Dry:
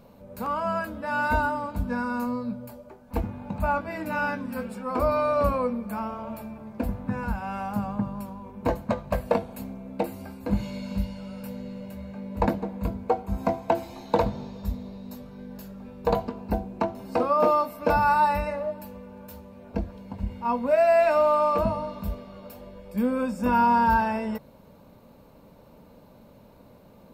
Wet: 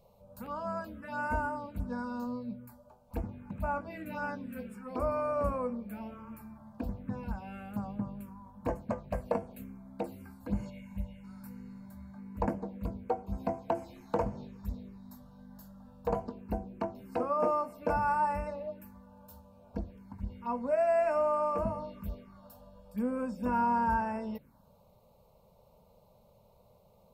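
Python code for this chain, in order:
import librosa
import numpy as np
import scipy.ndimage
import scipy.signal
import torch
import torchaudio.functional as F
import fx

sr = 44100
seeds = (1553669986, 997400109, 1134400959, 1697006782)

y = fx.fixed_phaser(x, sr, hz=1300.0, stages=6, at=(10.69, 11.23), fade=0.02)
y = fx.env_phaser(y, sr, low_hz=250.0, high_hz=3800.0, full_db=-22.5)
y = y * librosa.db_to_amplitude(-7.5)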